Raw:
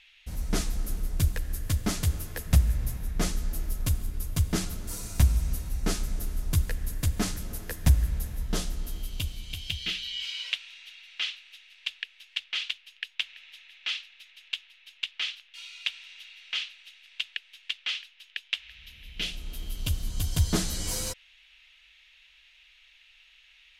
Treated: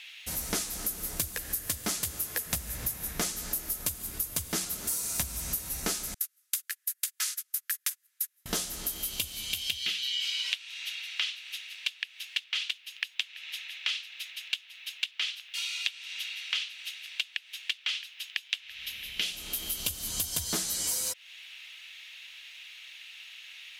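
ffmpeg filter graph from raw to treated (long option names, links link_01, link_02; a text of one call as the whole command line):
ffmpeg -i in.wav -filter_complex "[0:a]asettb=1/sr,asplit=3[link_01][link_02][link_03];[link_01]atrim=end=6.144[link_04];[link_02]atrim=start=6.14:end=8.46,asetpts=PTS-STARTPTS,afade=type=in:duration=0.004:curve=qsin,afade=type=out:start_time=2.316:duration=0.004:curve=qsin,highpass=frequency=1400:width=0.5412,highpass=frequency=1400:width=1.3066,agate=range=-34dB:threshold=-43dB:ratio=16:release=100:detection=peak[link_05];[link_03]atrim=start=8.456[link_06];[link_04][link_05]acrossfade=duration=0.004:curve1=hsin:curve2=qsin[link_07];[link_07][link_06]acrossfade=duration=0.004:curve1=qsin:curve2=hsin,highpass=frequency=510:poles=1,highshelf=frequency=6600:gain=11.5,acompressor=threshold=-38dB:ratio=6,volume=9dB" out.wav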